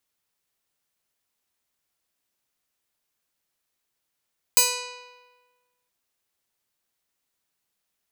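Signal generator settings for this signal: plucked string B4, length 1.32 s, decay 1.37 s, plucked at 0.27, bright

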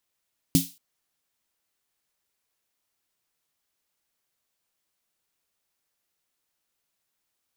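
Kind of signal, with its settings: snare drum length 0.23 s, tones 170 Hz, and 270 Hz, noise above 3.1 kHz, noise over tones -6 dB, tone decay 0.19 s, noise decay 0.33 s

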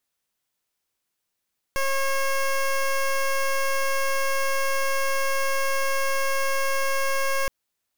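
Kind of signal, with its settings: pulse 543 Hz, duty 14% -23 dBFS 5.72 s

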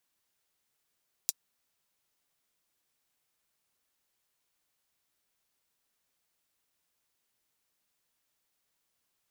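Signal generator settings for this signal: closed hi-hat, high-pass 5.2 kHz, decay 0.04 s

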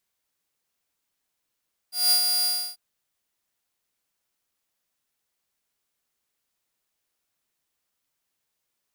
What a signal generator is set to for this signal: ADSR saw 4.82 kHz, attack 192 ms, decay 94 ms, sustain -5 dB, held 0.53 s, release 312 ms -13.5 dBFS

